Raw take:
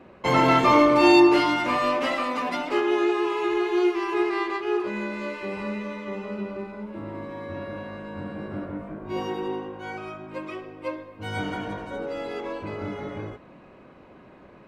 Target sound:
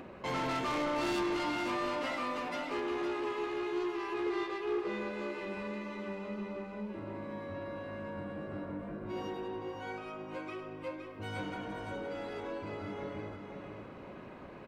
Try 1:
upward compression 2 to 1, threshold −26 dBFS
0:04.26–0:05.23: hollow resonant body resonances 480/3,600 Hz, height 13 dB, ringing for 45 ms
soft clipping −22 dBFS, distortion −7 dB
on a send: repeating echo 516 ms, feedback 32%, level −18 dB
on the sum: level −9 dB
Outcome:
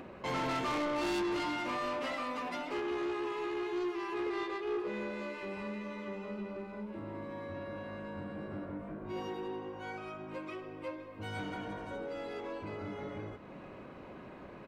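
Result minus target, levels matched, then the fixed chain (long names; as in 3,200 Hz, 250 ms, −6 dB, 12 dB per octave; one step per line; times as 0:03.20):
echo-to-direct −11 dB
upward compression 2 to 1, threshold −26 dBFS
0:04.26–0:05.23: hollow resonant body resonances 480/3,600 Hz, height 13 dB, ringing for 45 ms
soft clipping −22 dBFS, distortion −7 dB
on a send: repeating echo 516 ms, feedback 32%, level −7 dB
on the sum: level −9 dB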